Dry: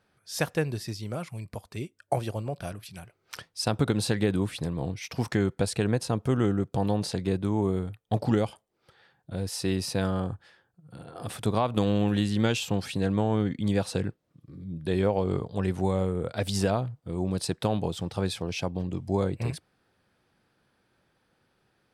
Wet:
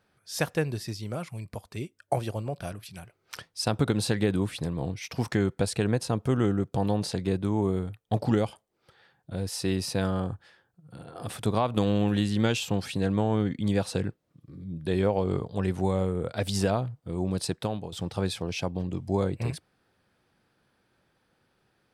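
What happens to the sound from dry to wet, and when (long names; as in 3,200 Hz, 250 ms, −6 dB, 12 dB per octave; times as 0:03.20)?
0:17.46–0:17.92: fade out, to −11.5 dB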